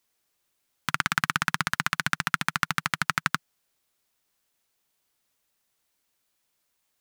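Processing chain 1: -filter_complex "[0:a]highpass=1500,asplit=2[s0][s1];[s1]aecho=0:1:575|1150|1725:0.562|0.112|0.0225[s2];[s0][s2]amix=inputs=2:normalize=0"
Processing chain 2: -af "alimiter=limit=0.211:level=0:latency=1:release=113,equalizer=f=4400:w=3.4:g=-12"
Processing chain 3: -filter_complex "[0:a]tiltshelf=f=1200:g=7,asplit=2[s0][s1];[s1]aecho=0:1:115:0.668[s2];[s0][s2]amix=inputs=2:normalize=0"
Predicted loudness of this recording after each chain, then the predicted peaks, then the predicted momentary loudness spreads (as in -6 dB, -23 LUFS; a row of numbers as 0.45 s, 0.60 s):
-29.0 LUFS, -38.0 LUFS, -26.5 LUFS; -4.5 dBFS, -15.5 dBFS, -5.0 dBFS; 12 LU, 5 LU, 7 LU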